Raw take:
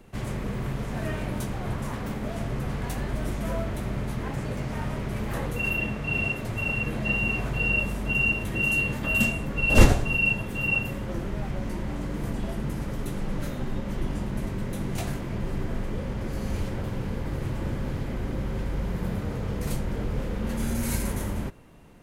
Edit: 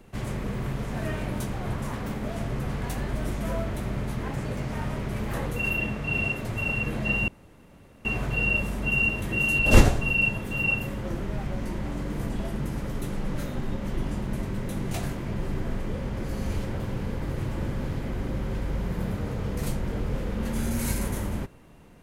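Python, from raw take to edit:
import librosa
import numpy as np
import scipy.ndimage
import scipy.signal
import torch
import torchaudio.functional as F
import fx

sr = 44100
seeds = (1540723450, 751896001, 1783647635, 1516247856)

y = fx.edit(x, sr, fx.insert_room_tone(at_s=7.28, length_s=0.77),
    fx.cut(start_s=8.82, length_s=0.81), tone=tone)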